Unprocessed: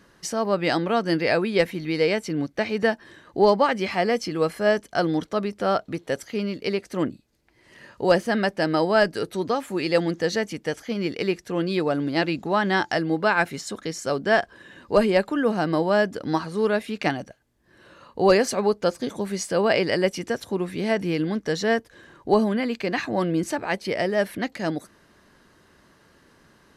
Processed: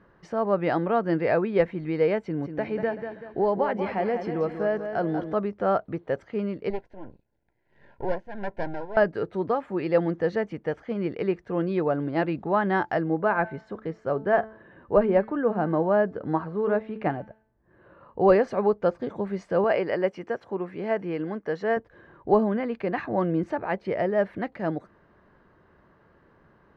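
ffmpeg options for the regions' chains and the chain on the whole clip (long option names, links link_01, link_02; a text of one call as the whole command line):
ffmpeg -i in.wav -filter_complex "[0:a]asettb=1/sr,asplit=3[link_01][link_02][link_03];[link_01]atrim=end=2.204[link_04];[link_02]atrim=start=2.2:end=5.34,asetpts=PTS-STARTPTS,afade=type=in:duration=0.004:curve=qsin,afade=type=out:start_time=3.136:duration=0.004:curve=qsin,bandreject=frequency=1200:width=8.9,acompressor=threshold=-22dB:ratio=2:attack=3.2:release=140:knee=1:detection=peak,aecho=1:1:191|382|573|764|955:0.398|0.171|0.0736|0.0317|0.0136,atrim=end_sample=138474[link_05];[link_03]atrim=start=5.336[link_06];[link_04][link_05]acrossfade=duration=0.004:curve1=hsin:curve2=qsin[link_07];[link_07][link_06]acrossfade=duration=0.004:curve1=qsin:curve2=hsin,asettb=1/sr,asplit=3[link_08][link_09][link_10];[link_08]atrim=end=6.704[link_11];[link_09]atrim=start=6.7:end=8.97,asetpts=PTS-STARTPTS,afade=type=in:duration=0.004:curve=qsin,afade=type=out:start_time=2.266:duration=0.004:curve=qsin,aeval=exprs='max(val(0),0)':channel_layout=same,tremolo=f=1.6:d=0.68,asuperstop=centerf=1200:order=20:qfactor=4[link_12];[link_10]atrim=start=8.966[link_13];[link_11][link_12]acrossfade=duration=0.004:curve1=hsin:curve2=qsin[link_14];[link_14][link_13]acrossfade=duration=0.004:curve1=qsin:curve2=hsin,asettb=1/sr,asplit=3[link_15][link_16][link_17];[link_15]atrim=end=13.044[link_18];[link_16]atrim=start=13.04:end=18.21,asetpts=PTS-STARTPTS,afade=type=in:duration=0.004:curve=qsin,afade=type=out:start_time=5.166:duration=0.004:curve=qsin,lowpass=frequency=2000:poles=1,bandreject=frequency=218.7:width_type=h:width=4,bandreject=frequency=437.4:width_type=h:width=4,bandreject=frequency=656.1:width_type=h:width=4,bandreject=frequency=874.8:width_type=h:width=4,bandreject=frequency=1093.5:width_type=h:width=4,bandreject=frequency=1312.2:width_type=h:width=4,bandreject=frequency=1530.9:width_type=h:width=4,bandreject=frequency=1749.6:width_type=h:width=4,bandreject=frequency=1968.3:width_type=h:width=4,bandreject=frequency=2187:width_type=h:width=4,bandreject=frequency=2405.7:width_type=h:width=4,bandreject=frequency=2624.4:width_type=h:width=4,bandreject=frequency=2843.1:width_type=h:width=4,bandreject=frequency=3061.8:width_type=h:width=4,bandreject=frequency=3280.5:width_type=h:width=4,bandreject=frequency=3499.2:width_type=h:width=4,bandreject=frequency=3717.9:width_type=h:width=4,bandreject=frequency=3936.6:width_type=h:width=4,bandreject=frequency=4155.3:width_type=h:width=4,bandreject=frequency=4374:width_type=h:width=4,bandreject=frequency=4592.7:width_type=h:width=4,bandreject=frequency=4811.4:width_type=h:width=4,bandreject=frequency=5030.1:width_type=h:width=4,bandreject=frequency=5248.8:width_type=h:width=4,bandreject=frequency=5467.5:width_type=h:width=4,bandreject=frequency=5686.2:width_type=h:width=4,bandreject=frequency=5904.9:width_type=h:width=4,bandreject=frequency=6123.6:width_type=h:width=4,bandreject=frequency=6342.3:width_type=h:width=4,bandreject=frequency=6561:width_type=h:width=4,bandreject=frequency=6779.7:width_type=h:width=4,bandreject=frequency=6998.4:width_type=h:width=4,bandreject=frequency=7217.1:width_type=h:width=4,bandreject=frequency=7435.8:width_type=h:width=4[link_19];[link_17]atrim=start=18.206[link_20];[link_18][link_19]acrossfade=duration=0.004:curve1=hsin:curve2=qsin[link_21];[link_21][link_20]acrossfade=duration=0.004:curve1=qsin:curve2=hsin,asettb=1/sr,asplit=3[link_22][link_23][link_24];[link_22]atrim=end=19.644[link_25];[link_23]atrim=start=19.64:end=21.77,asetpts=PTS-STARTPTS,afade=type=in:duration=0.004:curve=qsin,afade=type=out:start_time=2.126:duration=0.004:curve=qsin,highpass=frequency=340:poles=1,bandreject=frequency=3700:width=8.1[link_26];[link_24]atrim=start=21.766[link_27];[link_25][link_26]acrossfade=duration=0.004:curve1=hsin:curve2=qsin[link_28];[link_28][link_27]acrossfade=duration=0.004:curve1=qsin:curve2=hsin,lowpass=1400,equalizer=frequency=260:width_type=o:width=0.55:gain=-5" out.wav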